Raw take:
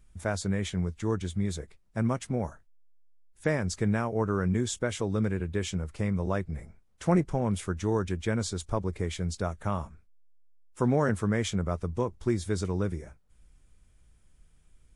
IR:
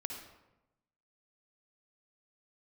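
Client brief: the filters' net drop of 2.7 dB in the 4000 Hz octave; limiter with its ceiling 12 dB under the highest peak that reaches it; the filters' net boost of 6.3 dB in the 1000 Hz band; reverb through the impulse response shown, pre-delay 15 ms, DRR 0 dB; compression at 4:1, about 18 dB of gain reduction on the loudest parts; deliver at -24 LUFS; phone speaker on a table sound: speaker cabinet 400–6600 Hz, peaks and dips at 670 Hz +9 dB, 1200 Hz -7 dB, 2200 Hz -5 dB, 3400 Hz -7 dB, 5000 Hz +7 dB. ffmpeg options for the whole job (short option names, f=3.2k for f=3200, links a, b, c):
-filter_complex "[0:a]equalizer=f=1k:t=o:g=7,equalizer=f=4k:t=o:g=-4,acompressor=threshold=-41dB:ratio=4,alimiter=level_in=11.5dB:limit=-24dB:level=0:latency=1,volume=-11.5dB,asplit=2[a][b];[1:a]atrim=start_sample=2205,adelay=15[c];[b][c]afir=irnorm=-1:irlink=0,volume=0.5dB[d];[a][d]amix=inputs=2:normalize=0,highpass=f=400:w=0.5412,highpass=f=400:w=1.3066,equalizer=f=670:t=q:w=4:g=9,equalizer=f=1.2k:t=q:w=4:g=-7,equalizer=f=2.2k:t=q:w=4:g=-5,equalizer=f=3.4k:t=q:w=4:g=-7,equalizer=f=5k:t=q:w=4:g=7,lowpass=f=6.6k:w=0.5412,lowpass=f=6.6k:w=1.3066,volume=24.5dB"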